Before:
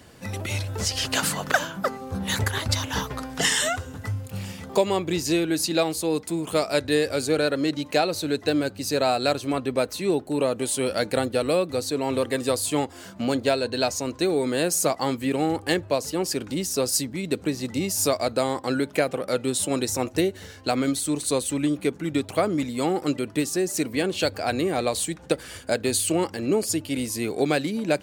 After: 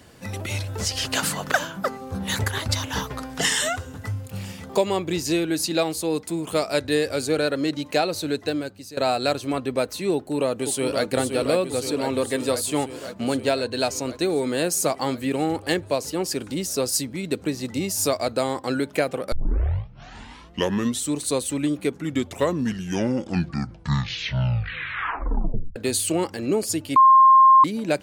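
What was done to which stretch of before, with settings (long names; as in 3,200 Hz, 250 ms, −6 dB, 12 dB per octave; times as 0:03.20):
0:08.31–0:08.97: fade out, to −17.5 dB
0:10.14–0:11.05: delay throw 520 ms, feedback 75%, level −6 dB
0:19.32: tape start 1.82 s
0:21.89: tape stop 3.87 s
0:26.96–0:27.64: beep over 1,060 Hz −9 dBFS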